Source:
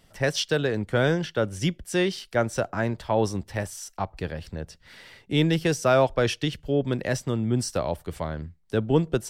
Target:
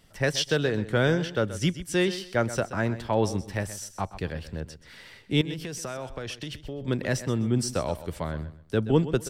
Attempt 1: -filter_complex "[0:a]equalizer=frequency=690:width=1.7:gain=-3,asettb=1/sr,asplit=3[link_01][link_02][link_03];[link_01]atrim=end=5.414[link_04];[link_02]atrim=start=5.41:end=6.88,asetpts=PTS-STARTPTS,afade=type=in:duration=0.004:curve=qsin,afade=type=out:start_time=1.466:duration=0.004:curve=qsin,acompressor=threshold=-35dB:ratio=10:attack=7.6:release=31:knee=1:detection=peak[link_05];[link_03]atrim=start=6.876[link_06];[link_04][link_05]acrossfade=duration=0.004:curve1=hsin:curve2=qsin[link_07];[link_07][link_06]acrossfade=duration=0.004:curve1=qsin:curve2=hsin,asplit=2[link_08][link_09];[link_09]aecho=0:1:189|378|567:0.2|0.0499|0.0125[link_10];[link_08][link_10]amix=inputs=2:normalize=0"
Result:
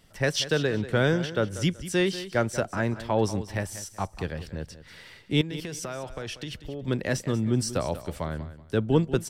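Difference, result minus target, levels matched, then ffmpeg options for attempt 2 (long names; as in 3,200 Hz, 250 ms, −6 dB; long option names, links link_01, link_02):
echo 61 ms late
-filter_complex "[0:a]equalizer=frequency=690:width=1.7:gain=-3,asettb=1/sr,asplit=3[link_01][link_02][link_03];[link_01]atrim=end=5.414[link_04];[link_02]atrim=start=5.41:end=6.88,asetpts=PTS-STARTPTS,afade=type=in:duration=0.004:curve=qsin,afade=type=out:start_time=1.466:duration=0.004:curve=qsin,acompressor=threshold=-35dB:ratio=10:attack=7.6:release=31:knee=1:detection=peak[link_05];[link_03]atrim=start=6.876[link_06];[link_04][link_05]acrossfade=duration=0.004:curve1=hsin:curve2=qsin[link_07];[link_07][link_06]acrossfade=duration=0.004:curve1=qsin:curve2=hsin,asplit=2[link_08][link_09];[link_09]aecho=0:1:128|256|384:0.2|0.0499|0.0125[link_10];[link_08][link_10]amix=inputs=2:normalize=0"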